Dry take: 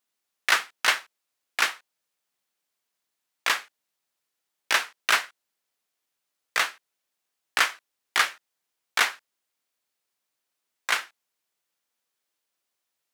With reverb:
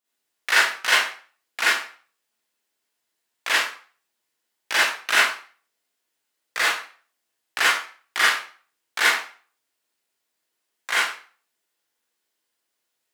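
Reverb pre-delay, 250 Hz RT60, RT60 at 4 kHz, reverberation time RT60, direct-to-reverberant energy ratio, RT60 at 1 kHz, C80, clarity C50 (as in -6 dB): 39 ms, 0.40 s, 0.35 s, 0.40 s, -9.0 dB, 0.45 s, 6.0 dB, -1.5 dB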